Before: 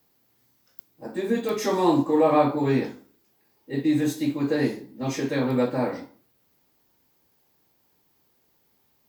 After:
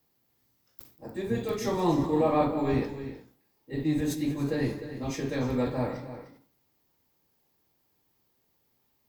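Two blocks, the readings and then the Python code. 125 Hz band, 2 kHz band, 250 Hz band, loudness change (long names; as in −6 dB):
−1.0 dB, −5.5 dB, −5.0 dB, −5.0 dB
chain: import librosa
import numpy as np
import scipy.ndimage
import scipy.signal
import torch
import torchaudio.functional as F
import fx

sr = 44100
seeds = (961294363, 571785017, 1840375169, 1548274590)

y = fx.octave_divider(x, sr, octaves=1, level_db=-4.0)
y = fx.notch(y, sr, hz=1500.0, q=24.0)
y = fx.echo_multitap(y, sr, ms=(44, 189, 304, 370), db=(-17.0, -16.5, -12.0, -19.5))
y = fx.sustainer(y, sr, db_per_s=130.0)
y = y * librosa.db_to_amplitude(-6.0)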